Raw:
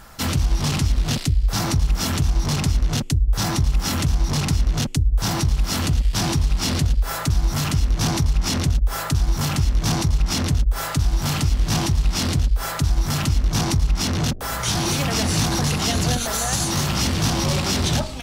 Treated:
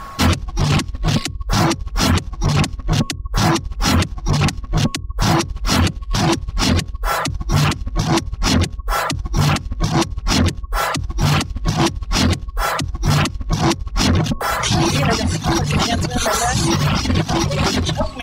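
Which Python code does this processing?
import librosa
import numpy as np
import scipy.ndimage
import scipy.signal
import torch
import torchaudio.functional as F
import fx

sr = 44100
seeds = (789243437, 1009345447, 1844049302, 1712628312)

y = x + 10.0 ** (-42.0 / 20.0) * np.sin(2.0 * np.pi * 1100.0 * np.arange(len(x)) / sr)
y = fx.over_compress(y, sr, threshold_db=-22.0, ratio=-0.5)
y = fx.high_shelf(y, sr, hz=5800.0, db=-12.0)
y = fx.hum_notches(y, sr, base_hz=60, count=9)
y = fx.dereverb_blind(y, sr, rt60_s=1.8)
y = y * librosa.db_to_amplitude(8.0)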